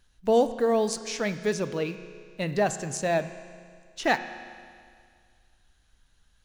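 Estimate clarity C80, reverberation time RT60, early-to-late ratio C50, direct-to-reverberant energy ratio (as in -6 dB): 12.0 dB, 2.1 s, 11.0 dB, 9.5 dB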